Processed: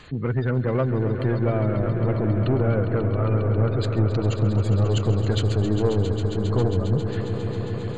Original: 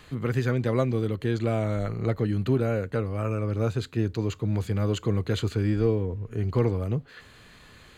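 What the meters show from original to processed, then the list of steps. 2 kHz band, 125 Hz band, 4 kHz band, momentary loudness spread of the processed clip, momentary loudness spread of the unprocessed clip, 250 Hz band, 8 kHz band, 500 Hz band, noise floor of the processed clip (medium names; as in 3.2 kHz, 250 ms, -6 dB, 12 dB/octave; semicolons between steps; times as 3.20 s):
+1.5 dB, +5.5 dB, +4.0 dB, 4 LU, 4 LU, +3.0 dB, no reading, +3.5 dB, -29 dBFS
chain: spectral gate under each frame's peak -25 dB strong; saturation -20.5 dBFS, distortion -13 dB; echo with a slow build-up 135 ms, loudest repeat 5, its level -12 dB; trim +4.5 dB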